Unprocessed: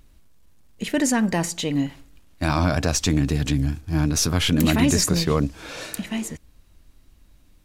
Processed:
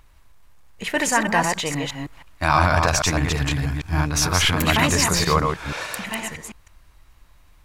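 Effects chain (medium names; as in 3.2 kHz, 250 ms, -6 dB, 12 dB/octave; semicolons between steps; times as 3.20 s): chunks repeated in reverse 159 ms, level -3.5 dB; graphic EQ 250/1000/2000 Hz -9/+9/+5 dB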